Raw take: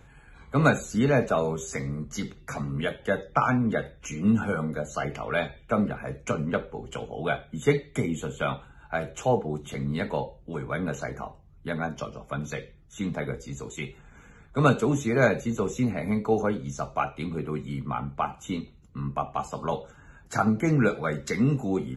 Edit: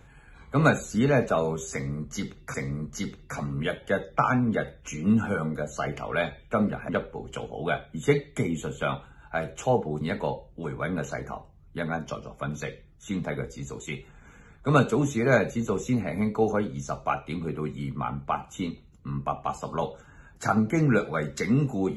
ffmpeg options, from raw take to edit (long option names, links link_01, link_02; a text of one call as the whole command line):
ffmpeg -i in.wav -filter_complex "[0:a]asplit=4[link_01][link_02][link_03][link_04];[link_01]atrim=end=2.542[link_05];[link_02]atrim=start=1.718:end=6.072[link_06];[link_03]atrim=start=6.478:end=9.602[link_07];[link_04]atrim=start=9.908[link_08];[link_05][link_06]acrossfade=duration=0.004:curve1=hsin:curve2=hsin[link_09];[link_09][link_07]acrossfade=duration=0.004:curve1=hsin:curve2=hsin[link_10];[link_10][link_08]acrossfade=duration=0.004:curve1=hsin:curve2=hsin" out.wav